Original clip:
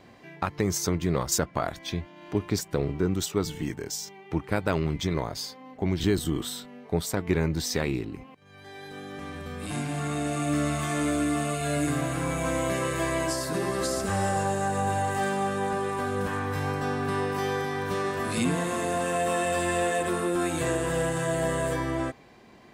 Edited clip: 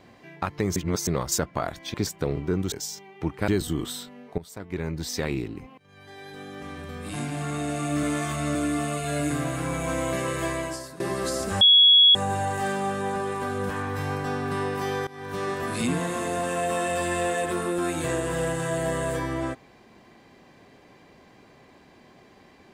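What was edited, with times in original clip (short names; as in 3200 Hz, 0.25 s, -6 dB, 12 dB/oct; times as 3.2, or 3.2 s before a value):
0.76–1.07 reverse
1.94–2.46 cut
3.24–3.82 cut
4.58–6.05 cut
6.95–7.91 fade in, from -18.5 dB
10.6–11.12 reverse
13.02–13.57 fade out, to -17.5 dB
14.18–14.72 bleep 3350 Hz -11.5 dBFS
17.64–18.03 fade in, from -20 dB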